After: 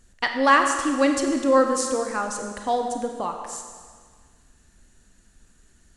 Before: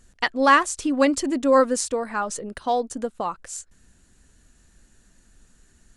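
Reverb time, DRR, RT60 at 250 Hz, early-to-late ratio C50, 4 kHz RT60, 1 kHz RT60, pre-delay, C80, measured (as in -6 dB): 1.7 s, 4.0 dB, 1.8 s, 5.5 dB, 1.6 s, 1.7 s, 31 ms, 6.5 dB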